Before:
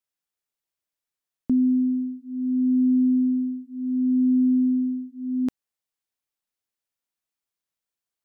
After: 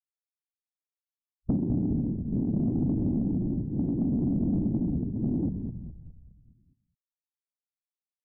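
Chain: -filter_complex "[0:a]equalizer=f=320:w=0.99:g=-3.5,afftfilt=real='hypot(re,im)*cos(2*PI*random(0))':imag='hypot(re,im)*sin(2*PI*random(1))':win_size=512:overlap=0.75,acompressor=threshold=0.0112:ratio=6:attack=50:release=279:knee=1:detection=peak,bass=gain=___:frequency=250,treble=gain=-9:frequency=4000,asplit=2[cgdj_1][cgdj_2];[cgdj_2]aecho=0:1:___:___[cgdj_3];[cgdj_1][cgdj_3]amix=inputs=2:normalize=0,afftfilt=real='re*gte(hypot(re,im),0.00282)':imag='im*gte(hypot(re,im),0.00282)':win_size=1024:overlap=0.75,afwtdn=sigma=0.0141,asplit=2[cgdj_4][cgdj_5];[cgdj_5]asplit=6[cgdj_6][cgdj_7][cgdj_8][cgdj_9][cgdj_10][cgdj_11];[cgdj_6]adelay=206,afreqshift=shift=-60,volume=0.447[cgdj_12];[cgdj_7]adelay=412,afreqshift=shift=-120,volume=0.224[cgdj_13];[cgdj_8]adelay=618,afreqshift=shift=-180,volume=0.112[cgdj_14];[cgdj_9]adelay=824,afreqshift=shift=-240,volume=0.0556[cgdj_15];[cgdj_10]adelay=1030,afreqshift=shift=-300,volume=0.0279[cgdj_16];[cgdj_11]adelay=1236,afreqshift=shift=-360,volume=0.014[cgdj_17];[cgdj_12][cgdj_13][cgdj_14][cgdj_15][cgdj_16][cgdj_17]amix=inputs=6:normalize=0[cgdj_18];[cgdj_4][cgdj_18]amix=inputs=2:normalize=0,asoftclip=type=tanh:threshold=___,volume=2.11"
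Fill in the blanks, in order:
11, 222, 0.224, 0.0631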